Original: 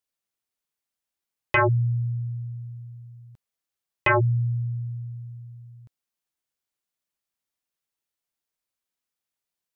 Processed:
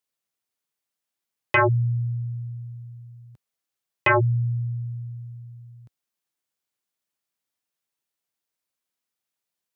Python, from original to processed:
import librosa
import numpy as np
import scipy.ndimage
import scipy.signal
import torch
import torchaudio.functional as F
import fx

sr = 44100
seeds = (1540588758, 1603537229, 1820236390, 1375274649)

y = scipy.signal.sosfilt(scipy.signal.butter(2, 88.0, 'highpass', fs=sr, output='sos'), x)
y = y * 10.0 ** (1.5 / 20.0)